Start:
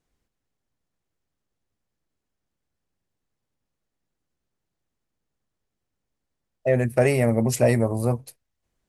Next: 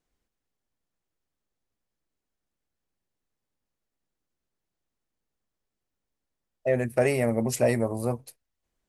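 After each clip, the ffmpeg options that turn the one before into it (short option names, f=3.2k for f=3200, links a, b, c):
-af "equalizer=f=110:w=1:g=-5,volume=-3dB"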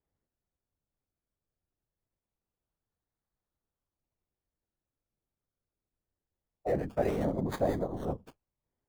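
-filter_complex "[0:a]afftfilt=real='hypot(re,im)*cos(2*PI*random(0))':imag='hypot(re,im)*sin(2*PI*random(1))':win_size=512:overlap=0.75,acrossover=split=390|1800[a][b][c];[c]acrusher=samples=31:mix=1:aa=0.000001:lfo=1:lforange=31:lforate=0.23[d];[a][b][d]amix=inputs=3:normalize=0"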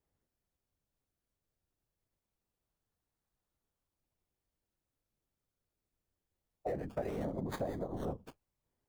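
-af "acompressor=threshold=-36dB:ratio=6,volume=1.5dB"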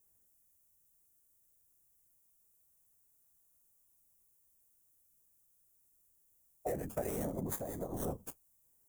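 -af "aexciter=amount=7.2:drive=7.6:freq=6.3k,alimiter=limit=-22dB:level=0:latency=1:release=380"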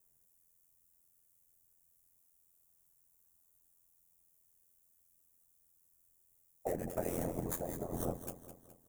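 -filter_complex "[0:a]aeval=exprs='val(0)*sin(2*PI*43*n/s)':c=same,asplit=2[a][b];[b]aecho=0:1:209|418|627|836|1045:0.266|0.12|0.0539|0.0242|0.0109[c];[a][c]amix=inputs=2:normalize=0,volume=3dB"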